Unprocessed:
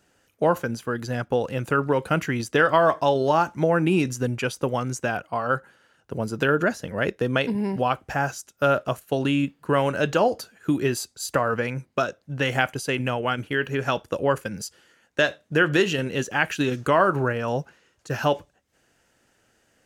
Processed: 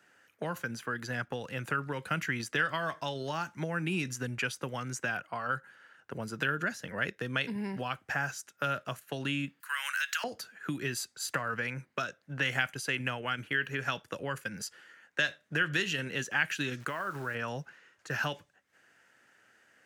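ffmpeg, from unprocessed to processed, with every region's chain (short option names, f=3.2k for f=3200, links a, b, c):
-filter_complex "[0:a]asettb=1/sr,asplit=3[a][b][c];[a]atrim=end=9.604[d];[b]atrim=start=9.6:end=10.24,asetpts=PTS-STARTPTS,afade=t=in:d=0.004:c=qsin,afade=t=out:st=0.636:d=0.004:c=qsin,highpass=f=1.4k:w=0.5412,highpass=f=1.4k:w=1.3066,acompressor=threshold=-33dB:ratio=2.5:attack=3.2:release=140:knee=1:detection=peak,aemphasis=mode=production:type=75fm[e];[c]atrim=start=10.236[f];[d][e]acrossfade=d=0.004:c1=hsin:c2=qsin[g];[g][f]acrossfade=d=0.004:c1=qsin:c2=hsin,asettb=1/sr,asplit=3[h][i][j];[h]atrim=end=16.804[k];[i]atrim=start=16.8:end=17.35,asetpts=PTS-STARTPTS,afade=t=in:d=0.004:c=qsin,afade=t=out:st=0.546:d=0.004:c=qsin,acompressor=threshold=-27dB:ratio=2.5:attack=3.2:release=140:knee=1:detection=peak,acrusher=bits=9:dc=4:mix=0:aa=0.000001[l];[j]atrim=start=17.346[m];[k][l]acrossfade=d=0.004:c1=hsin:c2=qsin[n];[n][m]acrossfade=d=0.004:c1=qsin:c2=hsin,acrossover=split=190|3000[o][p][q];[p]acompressor=threshold=-34dB:ratio=4[r];[o][r][q]amix=inputs=3:normalize=0,highpass=130,equalizer=f=1.7k:w=1:g=12,volume=-6dB"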